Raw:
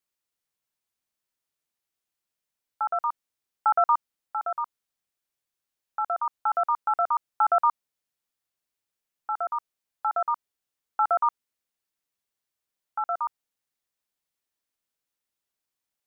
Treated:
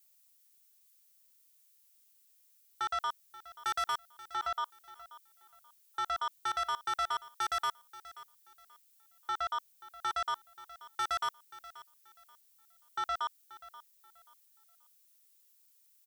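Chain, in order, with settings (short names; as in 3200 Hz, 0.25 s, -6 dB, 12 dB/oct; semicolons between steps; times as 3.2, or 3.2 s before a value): tilt +5.5 dB/oct; soft clip -30 dBFS, distortion -6 dB; on a send: feedback echo 0.532 s, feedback 28%, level -17.5 dB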